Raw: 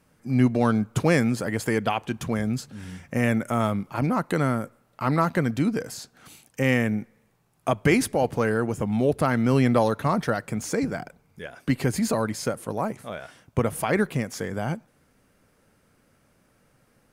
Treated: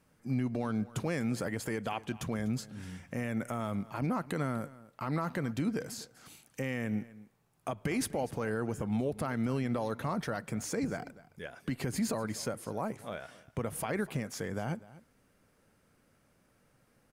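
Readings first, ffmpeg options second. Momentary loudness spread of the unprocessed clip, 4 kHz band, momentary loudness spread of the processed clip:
14 LU, −8.5 dB, 10 LU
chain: -filter_complex "[0:a]alimiter=limit=-18dB:level=0:latency=1:release=103,asplit=2[link_01][link_02];[link_02]aecho=0:1:247:0.112[link_03];[link_01][link_03]amix=inputs=2:normalize=0,volume=-5.5dB"

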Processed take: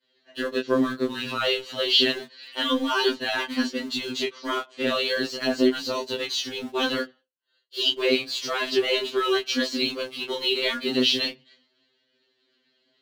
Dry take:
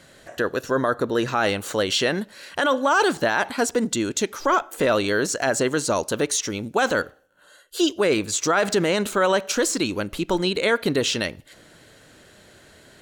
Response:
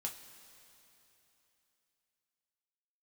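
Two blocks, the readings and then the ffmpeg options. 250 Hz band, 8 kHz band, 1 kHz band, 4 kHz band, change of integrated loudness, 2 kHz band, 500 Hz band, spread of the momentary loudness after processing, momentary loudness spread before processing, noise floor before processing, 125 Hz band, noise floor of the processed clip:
−2.5 dB, −13.0 dB, −7.5 dB, +4.5 dB, −2.5 dB, −4.0 dB, −4.5 dB, 9 LU, 6 LU, −52 dBFS, −13.0 dB, −71 dBFS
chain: -filter_complex "[0:a]highpass=frequency=200:width=0.5412,highpass=frequency=200:width=1.3066,equalizer=frequency=220:width_type=q:width=4:gain=7,equalizer=frequency=530:width_type=q:width=4:gain=-3,equalizer=frequency=810:width_type=q:width=4:gain=-9,equalizer=frequency=1400:width_type=q:width=4:gain=-7,equalizer=frequency=3000:width_type=q:width=4:gain=8,equalizer=frequency=4400:width_type=q:width=4:gain=9,lowpass=frequency=4900:width=0.5412,lowpass=frequency=4900:width=1.3066,asplit=2[link_01][link_02];[link_02]aeval=exprs='val(0)*gte(abs(val(0)),0.0473)':channel_layout=same,volume=-5dB[link_03];[link_01][link_03]amix=inputs=2:normalize=0,crystalizer=i=3:c=0,aemphasis=mode=reproduction:type=75kf,flanger=delay=17.5:depth=7.9:speed=0.33,agate=range=-33dB:threshold=-43dB:ratio=3:detection=peak,afftfilt=real='re*2.45*eq(mod(b,6),0)':imag='im*2.45*eq(mod(b,6),0)':win_size=2048:overlap=0.75,volume=-1dB"

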